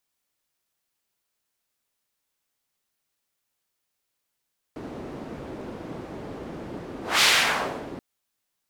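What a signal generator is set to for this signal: whoosh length 3.23 s, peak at 2.46, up 0.21 s, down 0.74 s, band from 330 Hz, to 3200 Hz, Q 1, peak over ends 19 dB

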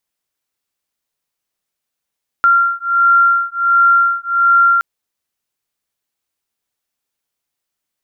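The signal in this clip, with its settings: beating tones 1380 Hz, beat 1.4 Hz, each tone -12.5 dBFS 2.37 s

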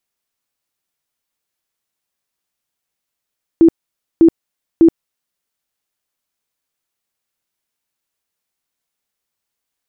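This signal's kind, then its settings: tone bursts 330 Hz, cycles 25, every 0.60 s, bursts 3, -4 dBFS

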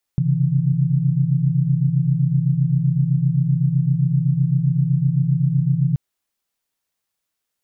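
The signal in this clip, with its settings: chord C3/C#3/E3 sine, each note -19.5 dBFS 5.78 s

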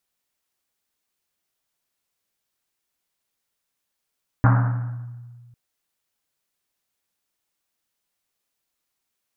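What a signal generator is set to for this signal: Risset drum, pitch 120 Hz, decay 1.91 s, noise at 1100 Hz, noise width 1000 Hz, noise 20%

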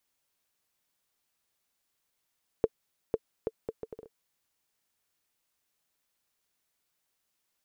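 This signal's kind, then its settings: bouncing ball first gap 0.50 s, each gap 0.66, 447 Hz, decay 43 ms -12 dBFS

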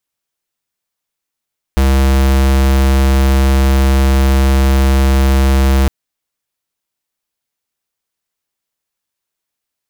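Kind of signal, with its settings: tone square 67 Hz -10 dBFS 4.11 s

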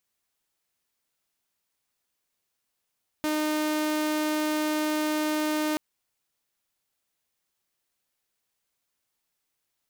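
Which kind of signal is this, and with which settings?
tone saw 306 Hz -22 dBFS 2.53 s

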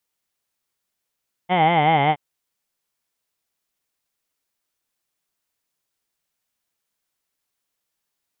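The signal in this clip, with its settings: formant vowel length 0.67 s, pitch 174 Hz, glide -3.5 st, vibrato depth 1.25 st, F1 790 Hz, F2 2100 Hz, F3 3100 Hz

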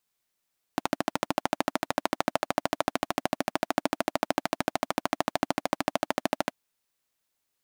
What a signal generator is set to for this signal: single-cylinder engine model, steady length 5.73 s, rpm 1600, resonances 290/640 Hz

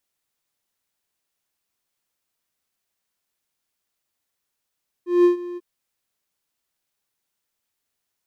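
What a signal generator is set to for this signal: ADSR triangle 352 Hz, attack 0.184 s, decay 0.118 s, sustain -18.5 dB, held 0.51 s, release 33 ms -8 dBFS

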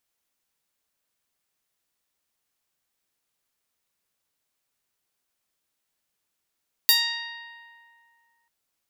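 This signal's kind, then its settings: plucked string A#5, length 1.59 s, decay 2.46 s, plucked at 0.1, bright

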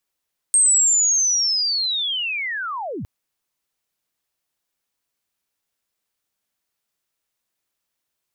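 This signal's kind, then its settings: chirp linear 8500 Hz -> 68 Hz -11.5 dBFS -> -26.5 dBFS 2.51 s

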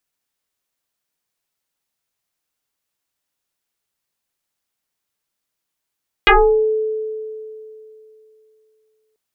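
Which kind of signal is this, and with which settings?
FM tone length 2.89 s, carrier 435 Hz, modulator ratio 0.94, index 7.5, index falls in 0.45 s exponential, decay 2.91 s, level -6 dB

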